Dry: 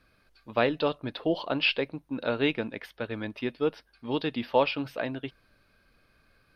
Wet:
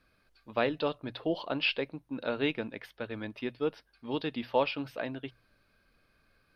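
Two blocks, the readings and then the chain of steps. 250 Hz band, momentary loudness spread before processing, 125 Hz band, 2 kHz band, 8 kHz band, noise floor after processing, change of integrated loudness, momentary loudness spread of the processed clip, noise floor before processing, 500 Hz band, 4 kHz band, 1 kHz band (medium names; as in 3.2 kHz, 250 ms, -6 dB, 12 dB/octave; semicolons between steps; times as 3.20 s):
-4.0 dB, 11 LU, -4.5 dB, -4.0 dB, no reading, -71 dBFS, -4.0 dB, 11 LU, -67 dBFS, -4.0 dB, -4.0 dB, -4.0 dB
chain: hum notches 60/120 Hz; trim -4 dB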